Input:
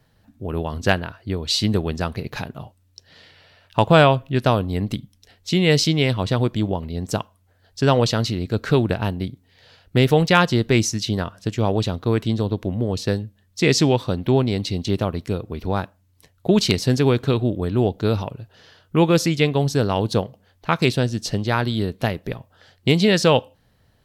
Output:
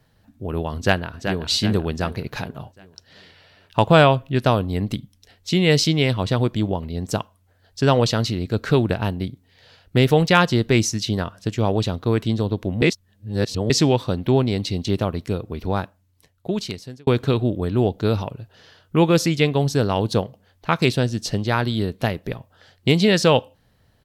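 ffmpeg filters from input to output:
-filter_complex "[0:a]asplit=2[s0][s1];[s1]afade=t=in:st=0.75:d=0.01,afade=t=out:st=1.43:d=0.01,aecho=0:1:380|760|1140|1520|1900|2280:0.421697|0.210848|0.105424|0.0527121|0.026356|0.013178[s2];[s0][s2]amix=inputs=2:normalize=0,asplit=4[s3][s4][s5][s6];[s3]atrim=end=12.822[s7];[s4]atrim=start=12.818:end=13.702,asetpts=PTS-STARTPTS,areverse[s8];[s5]atrim=start=13.698:end=17.07,asetpts=PTS-STARTPTS,afade=t=out:st=2.052:d=1.32[s9];[s6]atrim=start=17.07,asetpts=PTS-STARTPTS,afade=t=in:d=0.004:c=hsin[s10];[s7][s8]acrossfade=d=0.004:c1=hsin:c2=hsin[s11];[s9][s10]concat=n=2:v=0:a=1[s12];[s11][s12]acrossfade=d=0.004:c1=hsin:c2=hsin"

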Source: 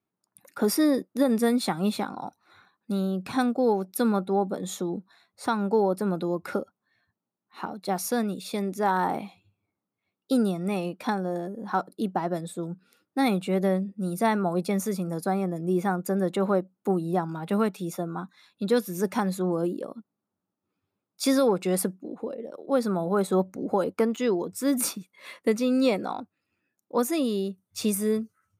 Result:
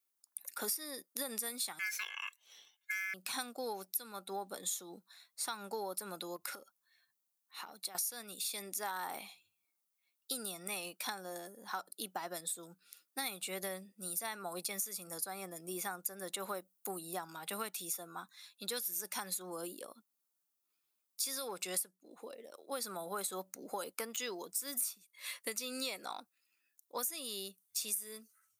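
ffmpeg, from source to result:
-filter_complex "[0:a]asettb=1/sr,asplit=3[s0][s1][s2];[s0]atrim=end=1.794[s3];[s1]atrim=start=1.79:end=3.14,asetpts=PTS-STARTPTS,afade=t=in:d=0.004:c=qsin,afade=t=out:st=1.346:d=0.004:c=qsin,aeval=exprs='val(0)*sin(2*PI*1900*n/s)':c=same[s4];[s2]atrim=start=3.136[s5];[s3][s4]acrossfade=d=0.004:c1=hsin:c2=qsin[s6];[s6][s5]acrossfade=d=0.004:c1=qsin:c2=hsin,asettb=1/sr,asplit=3[s7][s8][s9];[s7]atrim=end=6.364[s10];[s8]atrim=start=6.36:end=7.95,asetpts=PTS-STARTPTS,afade=t=in:d=0.004:c=qsin,afade=t=out:st=1.586:d=0.004:c=qsin,acompressor=threshold=0.02:ratio=10:attack=3.2:release=140:knee=1:detection=peak[s11];[s9]atrim=start=7.946[s12];[s10][s11]acrossfade=d=0.004:c1=hsin:c2=qsin[s13];[s13][s12]acrossfade=d=0.004:c1=qsin:c2=hsin,asettb=1/sr,asplit=3[s14][s15][s16];[s14]atrim=end=16.394[s17];[s15]atrim=start=16.39:end=17,asetpts=PTS-STARTPTS,afade=t=in:d=0.004:c=qsin,afade=t=out:st=0.606:d=0.004:c=qsin,highshelf=f=11000:g=7.5[s18];[s16]atrim=start=16.996[s19];[s17][s18]acrossfade=d=0.004:c1=hsin:c2=qsin[s20];[s20][s19]acrossfade=d=0.004:c1=qsin:c2=hsin,aderivative,acompressor=threshold=0.00631:ratio=6,volume=2.66"

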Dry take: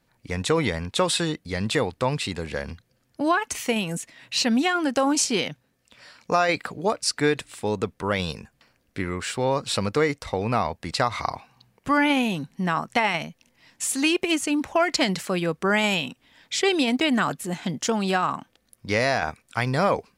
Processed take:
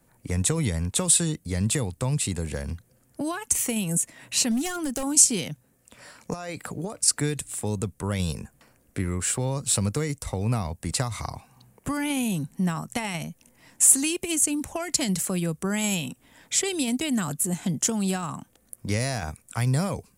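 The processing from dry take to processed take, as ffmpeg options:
-filter_complex "[0:a]asettb=1/sr,asplit=3[s0][s1][s2];[s0]atrim=end=4.514[s3];[s1]atrim=start=4.51:end=5.03,asetpts=PTS-STARTPTS,afade=t=in:d=0.004:c=qsin,afade=t=out:st=0.516:d=0.004:c=qsin,asoftclip=type=hard:threshold=0.1[s4];[s2]atrim=start=5.026[s5];[s3][s4]acrossfade=d=0.004:c1=hsin:c2=qsin[s6];[s6][s5]acrossfade=d=0.004:c1=qsin:c2=hsin,asettb=1/sr,asplit=3[s7][s8][s9];[s7]atrim=end=6.334[s10];[s8]atrim=start=6.33:end=7.08,asetpts=PTS-STARTPTS,afade=t=in:d=0.004:c=qsin,afade=t=out:st=0.746:d=0.004:c=qsin,acompressor=threshold=0.0501:ratio=6:attack=3.2:release=140:knee=1:detection=peak[s11];[s9]atrim=start=7.076[s12];[s10][s11]acrossfade=d=0.004:c1=hsin:c2=qsin[s13];[s13][s12]acrossfade=d=0.004:c1=qsin:c2=hsin,tiltshelf=f=1500:g=4,acrossover=split=180|3000[s14][s15][s16];[s15]acompressor=threshold=0.0141:ratio=3[s17];[s14][s17][s16]amix=inputs=3:normalize=0,highshelf=f=6200:t=q:w=1.5:g=11.5,volume=1.26"

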